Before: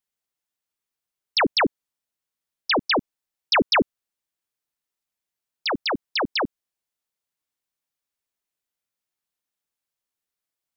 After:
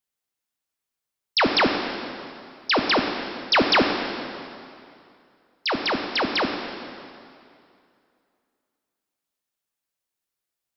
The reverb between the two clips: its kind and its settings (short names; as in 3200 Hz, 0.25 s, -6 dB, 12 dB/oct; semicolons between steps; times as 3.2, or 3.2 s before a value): plate-style reverb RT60 2.5 s, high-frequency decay 0.85×, DRR 3.5 dB